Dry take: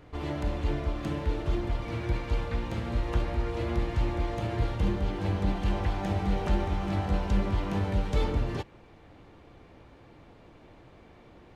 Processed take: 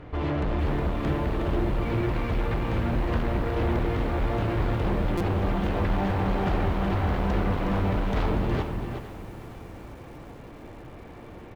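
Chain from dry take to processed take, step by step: tone controls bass +1 dB, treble -8 dB; in parallel at -10 dB: sine folder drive 15 dB, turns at -14 dBFS; on the sum: high shelf 5900 Hz -9.5 dB; on a send: tapped delay 0.237/0.365 s -12.5/-7.5 dB; on the sum: stuck buffer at 5.17, samples 256, times 5; lo-fi delay 0.459 s, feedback 55%, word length 7-bit, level -14 dB; gain -3 dB

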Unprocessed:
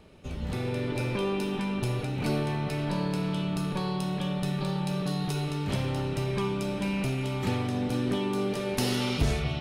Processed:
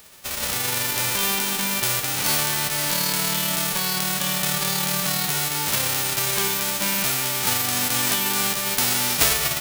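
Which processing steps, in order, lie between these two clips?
spectral whitening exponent 0.1; gain +6 dB

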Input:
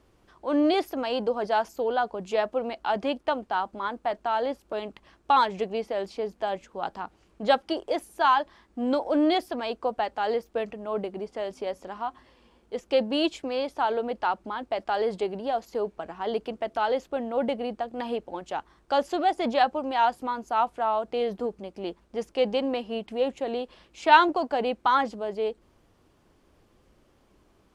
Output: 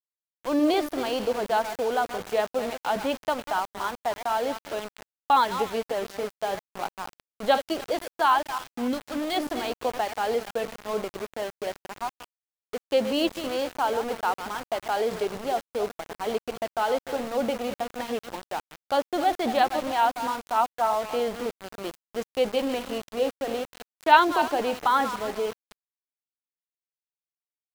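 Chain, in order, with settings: regenerating reverse delay 0.148 s, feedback 42%, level -10 dB; 8.87–9.36 bell 990 Hz -> 290 Hz -11.5 dB 1.6 oct; sample gate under -32.5 dBFS

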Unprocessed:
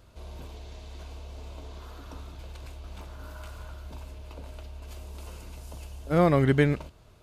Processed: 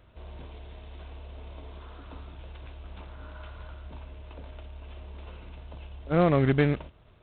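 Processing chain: tube stage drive 14 dB, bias 0.5; gain +1 dB; G.726 24 kbps 8000 Hz

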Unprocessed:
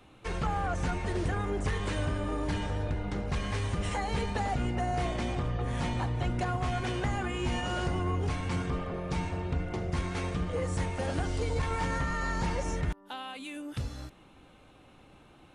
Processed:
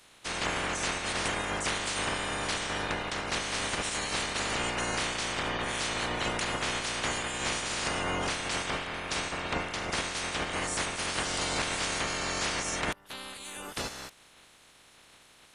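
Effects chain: spectral limiter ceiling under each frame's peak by 30 dB; downsampling 32000 Hz; gain -1 dB

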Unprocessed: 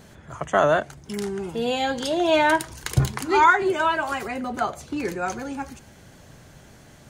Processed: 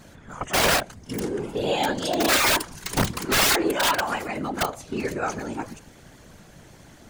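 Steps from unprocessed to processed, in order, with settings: pre-echo 33 ms -17 dB; wrapped overs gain 14.5 dB; whisperiser

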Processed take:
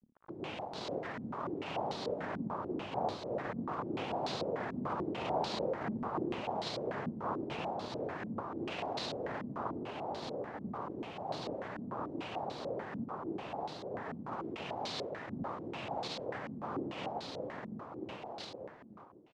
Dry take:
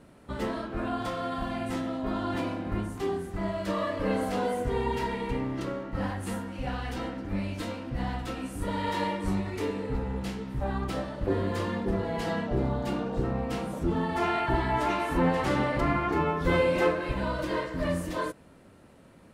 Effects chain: Doppler pass-by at 5.36, 10 m/s, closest 4.3 m; reverse; compressor 6:1, threshold -50 dBFS, peak gain reduction 21.5 dB; reverse; noise vocoder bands 2; companded quantiser 6-bit; on a send: feedback echo 0.52 s, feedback 30%, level -5 dB; on the sum: stepped low-pass 6.8 Hz 230–4100 Hz; gain +11 dB

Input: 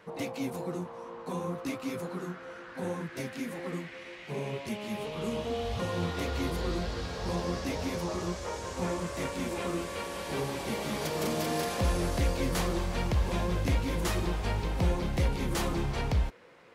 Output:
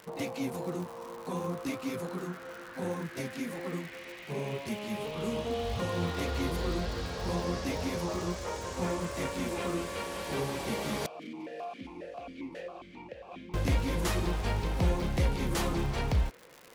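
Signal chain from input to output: crackle 160/s -38 dBFS; 11.06–13.54 vowel sequencer 7.4 Hz

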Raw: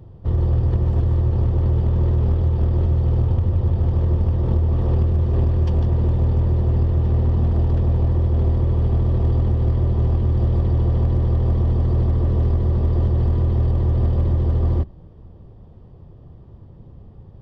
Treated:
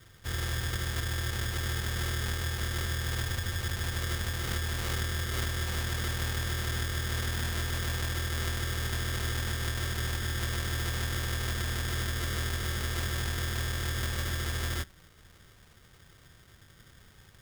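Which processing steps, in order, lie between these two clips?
sample-and-hold 26×; tilt shelf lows -8 dB, about 780 Hz; gain -8 dB

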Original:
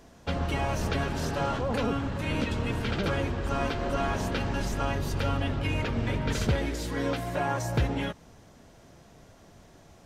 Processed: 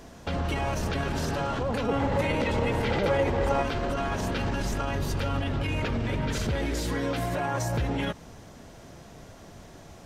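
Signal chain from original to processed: limiter -27 dBFS, peak gain reduction 11 dB; 1.88–3.63 small resonant body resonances 530/820/2000 Hz, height 10 dB, ringing for 20 ms; gain +6.5 dB

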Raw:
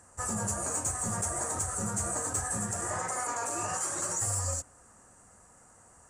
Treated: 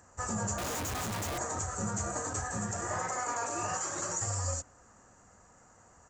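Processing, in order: downsampling 16000 Hz; 0.58–1.38 Schmitt trigger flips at -41 dBFS

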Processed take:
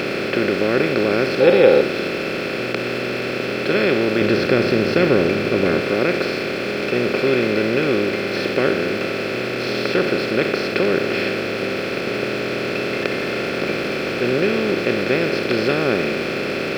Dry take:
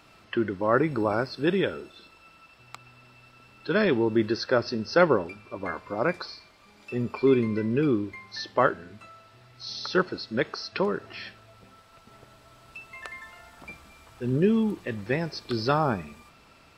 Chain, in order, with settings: per-bin compression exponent 0.2; 1.4–1.81 small resonant body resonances 510/810/3800 Hz, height 14 dB; 4.21–5.81 low shelf 200 Hz +8.5 dB; in parallel at -8 dB: sample gate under -21.5 dBFS; on the sum: fifteen-band EQ 400 Hz +5 dB, 1000 Hz -11 dB, 2500 Hz +12 dB; gain -8 dB

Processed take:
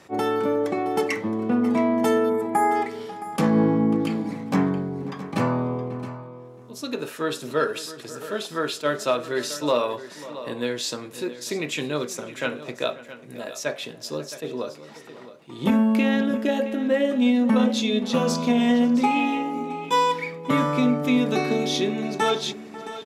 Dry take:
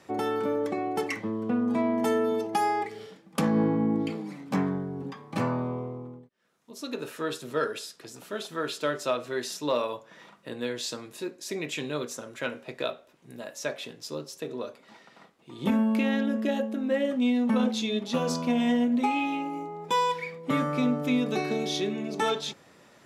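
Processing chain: outdoor echo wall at 93 m, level -17 dB; spectral gain 2.29–2.76, 2400–6800 Hz -19 dB; on a send: echo 0.669 s -14.5 dB; on the sum: attack slew limiter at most 430 dB/s; gain +5 dB

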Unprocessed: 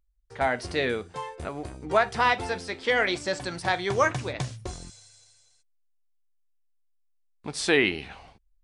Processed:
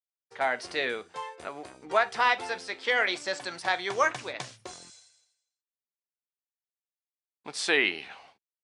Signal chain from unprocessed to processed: expander -48 dBFS; weighting filter A; gain -1.5 dB

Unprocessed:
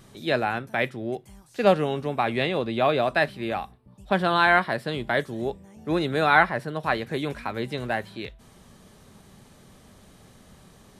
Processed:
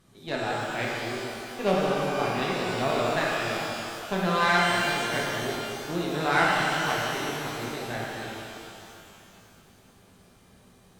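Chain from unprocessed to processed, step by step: added harmonics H 7 -27 dB, 8 -26 dB, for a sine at -3.5 dBFS; shimmer reverb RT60 2.7 s, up +12 st, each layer -8 dB, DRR -5 dB; gain -8 dB

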